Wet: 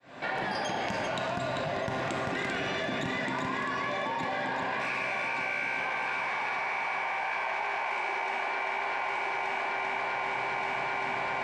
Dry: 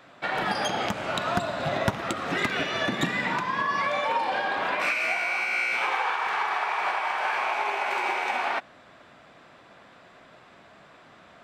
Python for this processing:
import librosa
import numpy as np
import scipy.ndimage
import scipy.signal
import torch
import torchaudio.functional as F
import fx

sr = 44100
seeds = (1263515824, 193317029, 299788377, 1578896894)

y = fx.fade_in_head(x, sr, length_s=2.03)
y = scipy.signal.sosfilt(scipy.signal.butter(2, 7600.0, 'lowpass', fs=sr, output='sos'), y)
y = fx.peak_eq(y, sr, hz=3400.0, db=-3.5, octaves=0.58)
y = fx.notch(y, sr, hz=1300.0, q=6.3)
y = fx.comb_fb(y, sr, f0_hz=130.0, decay_s=2.0, harmonics='all', damping=0.0, mix_pct=80)
y = fx.echo_heads(y, sr, ms=392, heads='first and third', feedback_pct=59, wet_db=-6.5)
y = fx.env_flatten(y, sr, amount_pct=100)
y = y * librosa.db_to_amplitude(2.0)